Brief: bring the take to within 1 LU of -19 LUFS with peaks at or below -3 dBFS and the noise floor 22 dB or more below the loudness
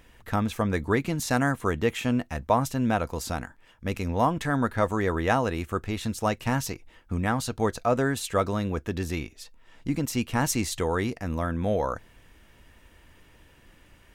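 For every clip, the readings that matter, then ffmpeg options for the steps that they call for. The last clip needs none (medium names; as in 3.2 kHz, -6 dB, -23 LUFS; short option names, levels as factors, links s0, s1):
loudness -27.5 LUFS; peak level -9.0 dBFS; loudness target -19.0 LUFS
-> -af "volume=2.66,alimiter=limit=0.708:level=0:latency=1"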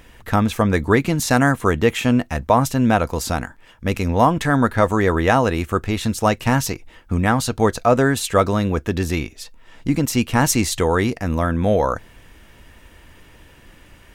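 loudness -19.0 LUFS; peak level -3.0 dBFS; noise floor -49 dBFS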